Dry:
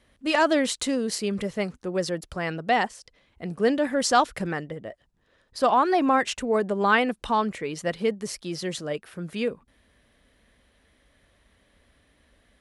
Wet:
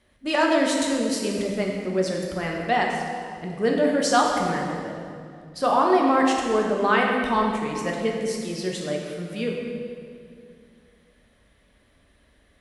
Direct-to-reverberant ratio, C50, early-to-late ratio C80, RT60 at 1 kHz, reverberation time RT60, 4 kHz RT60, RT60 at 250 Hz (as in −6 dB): −1.0 dB, 1.5 dB, 3.0 dB, 2.1 s, 2.3 s, 1.8 s, 2.9 s